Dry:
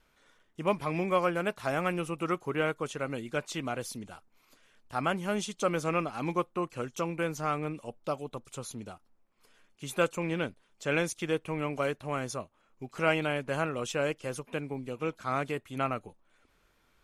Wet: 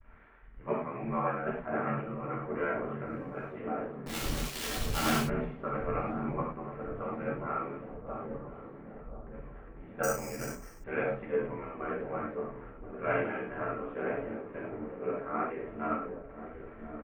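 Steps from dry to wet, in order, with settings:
linear delta modulator 64 kbit/s, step −36.5 dBFS
Butterworth low-pass 2,100 Hz 36 dB per octave
mains-hum notches 50/100/150/200/250/300/350 Hz
comb filter 4.4 ms, depth 57%
0:03.03–0:03.46: background noise brown −51 dBFS
0:04.05–0:05.18: log-companded quantiser 2 bits
ring modulation 38 Hz
delay with a low-pass on its return 1,033 ms, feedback 62%, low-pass 680 Hz, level −4 dB
convolution reverb, pre-delay 3 ms, DRR −3.5 dB
0:10.03–0:10.84: bad sample-rate conversion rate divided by 6×, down filtered, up hold
multiband upward and downward expander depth 70%
level −6.5 dB

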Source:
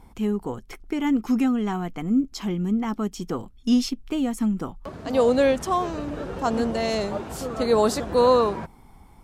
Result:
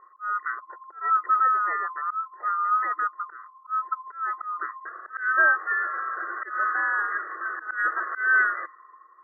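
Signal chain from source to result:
neighbouring bands swapped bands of 1,000 Hz
volume swells 221 ms
brick-wall band-pass 320–2,000 Hz
low-pass that shuts in the quiet parts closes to 860 Hz, open at −20 dBFS

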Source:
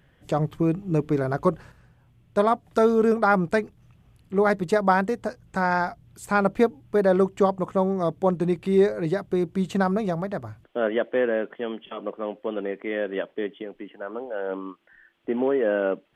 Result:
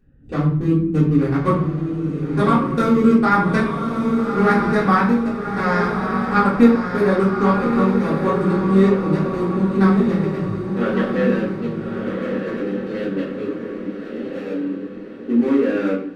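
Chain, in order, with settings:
adaptive Wiener filter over 41 samples
parametric band 670 Hz −14 dB 0.46 octaves
feedback delay with all-pass diffusion 1,228 ms, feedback 42%, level −5 dB
convolution reverb RT60 0.55 s, pre-delay 3 ms, DRR −8 dB
level −1.5 dB

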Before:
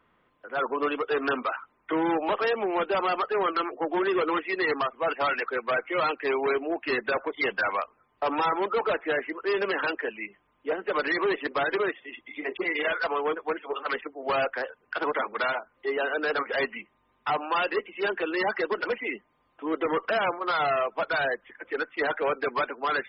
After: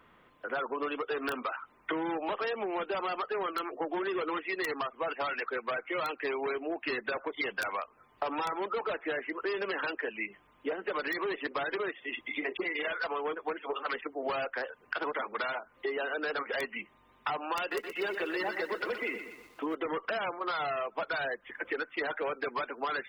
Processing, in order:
high-shelf EQ 2,600 Hz +3 dB
wrap-around overflow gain 16.5 dB
downward compressor 12 to 1, threshold −36 dBFS, peak gain reduction 14.5 dB
0:17.59–0:19.75: feedback echo at a low word length 122 ms, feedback 55%, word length 10 bits, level −8.5 dB
level +5 dB

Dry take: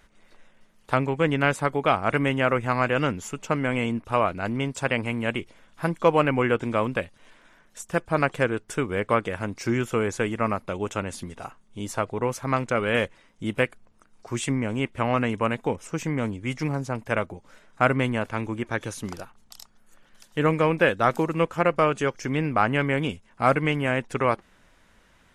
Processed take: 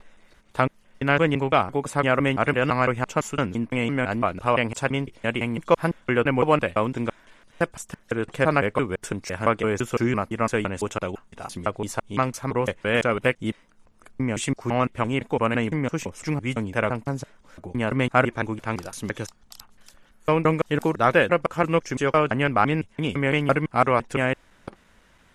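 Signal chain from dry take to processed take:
slices reordered back to front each 169 ms, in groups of 3
level +1.5 dB

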